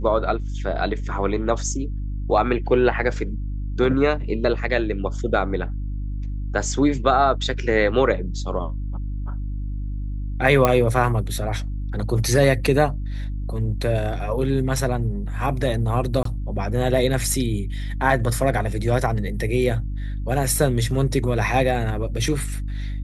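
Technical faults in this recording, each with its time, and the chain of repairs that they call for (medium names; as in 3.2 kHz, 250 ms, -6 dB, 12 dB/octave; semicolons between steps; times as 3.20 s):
hum 50 Hz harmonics 6 -27 dBFS
10.65 s: pop -4 dBFS
16.23–16.25 s: dropout 23 ms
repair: de-click; de-hum 50 Hz, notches 6; interpolate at 16.23 s, 23 ms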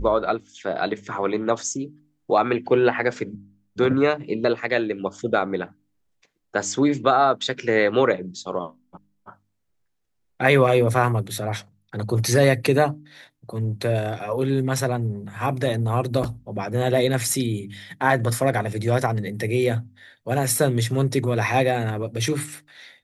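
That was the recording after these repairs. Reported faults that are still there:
nothing left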